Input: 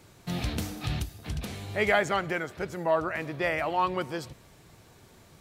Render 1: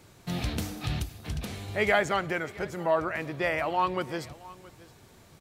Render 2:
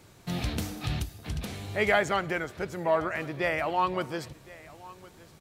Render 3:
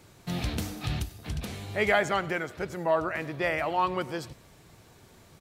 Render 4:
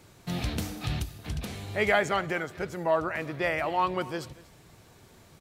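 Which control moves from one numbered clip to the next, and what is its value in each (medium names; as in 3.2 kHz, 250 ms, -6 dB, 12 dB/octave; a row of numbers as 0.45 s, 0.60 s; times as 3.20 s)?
delay, time: 670 ms, 1064 ms, 97 ms, 236 ms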